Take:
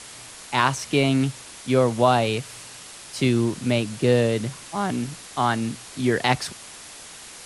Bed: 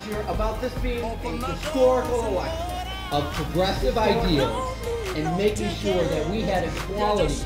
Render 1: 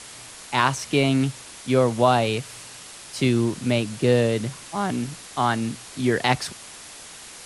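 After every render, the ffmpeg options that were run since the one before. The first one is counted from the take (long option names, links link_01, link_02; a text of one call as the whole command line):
ffmpeg -i in.wav -af anull out.wav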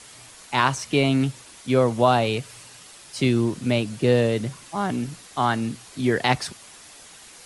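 ffmpeg -i in.wav -af "afftdn=noise_reduction=6:noise_floor=-42" out.wav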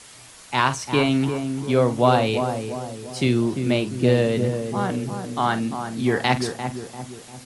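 ffmpeg -i in.wav -filter_complex "[0:a]asplit=2[link_01][link_02];[link_02]adelay=48,volume=-13dB[link_03];[link_01][link_03]amix=inputs=2:normalize=0,asplit=2[link_04][link_05];[link_05]adelay=346,lowpass=frequency=1000:poles=1,volume=-6dB,asplit=2[link_06][link_07];[link_07]adelay=346,lowpass=frequency=1000:poles=1,volume=0.52,asplit=2[link_08][link_09];[link_09]adelay=346,lowpass=frequency=1000:poles=1,volume=0.52,asplit=2[link_10][link_11];[link_11]adelay=346,lowpass=frequency=1000:poles=1,volume=0.52,asplit=2[link_12][link_13];[link_13]adelay=346,lowpass=frequency=1000:poles=1,volume=0.52,asplit=2[link_14][link_15];[link_15]adelay=346,lowpass=frequency=1000:poles=1,volume=0.52[link_16];[link_06][link_08][link_10][link_12][link_14][link_16]amix=inputs=6:normalize=0[link_17];[link_04][link_17]amix=inputs=2:normalize=0" out.wav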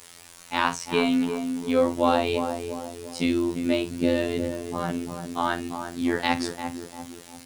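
ffmpeg -i in.wav -af "acrusher=bits=7:mix=0:aa=0.000001,afftfilt=real='hypot(re,im)*cos(PI*b)':imag='0':win_size=2048:overlap=0.75" out.wav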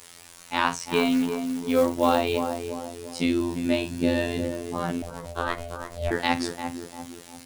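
ffmpeg -i in.wav -filter_complex "[0:a]asettb=1/sr,asplit=3[link_01][link_02][link_03];[link_01]atrim=end=0.784[link_04];[link_02]atrim=start=0.78:end=2.7,asetpts=PTS-STARTPTS,afade=type=in:duration=0.004:curve=qsin,afade=type=out:start_time=1.916:duration=0.004:curve=qsin,acrusher=bits=5:mode=log:mix=0:aa=0.000001[link_05];[link_03]atrim=start=2.696[link_06];[link_04][link_05]acrossfade=duration=0.004:curve1=hsin:curve2=qsin[link_07];[link_07][link_06]acrossfade=duration=0.004:curve1=qsin:curve2=hsin,asettb=1/sr,asplit=3[link_08][link_09][link_10];[link_08]atrim=end=3.374[link_11];[link_09]atrim=start=3.37:end=4.44,asetpts=PTS-STARTPTS,afade=type=in:duration=0.004:curve=qsin,afade=type=out:start_time=1.066:duration=0.004:curve=qsin,asplit=2[link_12][link_13];[link_13]adelay=36,volume=-6dB[link_14];[link_12][link_14]amix=inputs=2:normalize=0,atrim=end_sample=47187[link_15];[link_10]atrim=start=4.436[link_16];[link_11][link_15]acrossfade=duration=0.004:curve1=hsin:curve2=qsin[link_17];[link_17][link_16]acrossfade=duration=0.004:curve1=qsin:curve2=hsin,asettb=1/sr,asplit=3[link_18][link_19][link_20];[link_18]atrim=end=5.024[link_21];[link_19]atrim=start=5.02:end=6.11,asetpts=PTS-STARTPTS,afade=type=in:duration=0.004:curve=qsin,afade=type=out:start_time=1.086:duration=0.004:curve=qsin,aeval=exprs='val(0)*sin(2*PI*340*n/s)':channel_layout=same[link_22];[link_20]atrim=start=6.106[link_23];[link_21][link_22]acrossfade=duration=0.004:curve1=hsin:curve2=qsin[link_24];[link_24][link_23]acrossfade=duration=0.004:curve1=qsin:curve2=hsin" out.wav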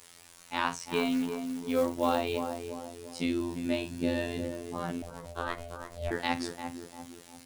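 ffmpeg -i in.wav -af "volume=-6.5dB" out.wav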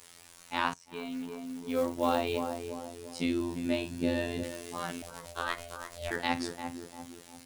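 ffmpeg -i in.wav -filter_complex "[0:a]asettb=1/sr,asplit=3[link_01][link_02][link_03];[link_01]atrim=end=4.434[link_04];[link_02]atrim=start=4.43:end=6.16,asetpts=PTS-STARTPTS,afade=type=in:duration=0.004:curve=qsin,afade=type=out:start_time=1.726:duration=0.004:curve=qsin,tiltshelf=frequency=940:gain=-6.5[link_05];[link_03]atrim=start=6.156[link_06];[link_04][link_05]acrossfade=duration=0.004:curve1=hsin:curve2=qsin[link_07];[link_07][link_06]acrossfade=duration=0.004:curve1=qsin:curve2=hsin,asplit=2[link_08][link_09];[link_08]atrim=end=0.74,asetpts=PTS-STARTPTS,afade=type=out:start_time=0.736:duration=0.004:curve=hsin:silence=0.125893[link_10];[link_09]atrim=start=0.74,asetpts=PTS-STARTPTS,afade=type=in:duration=1.45:silence=0.125893[link_11];[link_10][link_11]concat=n=2:v=0:a=1" out.wav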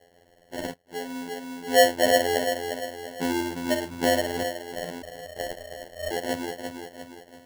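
ffmpeg -i in.wav -af "lowpass=frequency=520:width_type=q:width=4.9,acrusher=samples=36:mix=1:aa=0.000001" out.wav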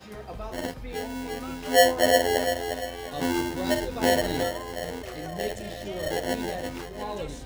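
ffmpeg -i in.wav -i bed.wav -filter_complex "[1:a]volume=-12dB[link_01];[0:a][link_01]amix=inputs=2:normalize=0" out.wav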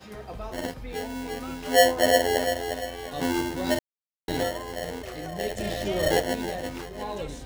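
ffmpeg -i in.wav -filter_complex "[0:a]asplit=3[link_01][link_02][link_03];[link_01]afade=type=out:start_time=5.57:duration=0.02[link_04];[link_02]acontrast=63,afade=type=in:start_time=5.57:duration=0.02,afade=type=out:start_time=6.21:duration=0.02[link_05];[link_03]afade=type=in:start_time=6.21:duration=0.02[link_06];[link_04][link_05][link_06]amix=inputs=3:normalize=0,asplit=3[link_07][link_08][link_09];[link_07]atrim=end=3.79,asetpts=PTS-STARTPTS,afade=type=out:start_time=3.786:duration=0.004:curve=hsin[link_10];[link_08]atrim=start=3.79:end=4.28,asetpts=PTS-STARTPTS,volume=0[link_11];[link_09]atrim=start=4.28,asetpts=PTS-STARTPTS,afade=type=in:duration=0.004:curve=hsin[link_12];[link_10][link_11][link_12]concat=n=3:v=0:a=1" out.wav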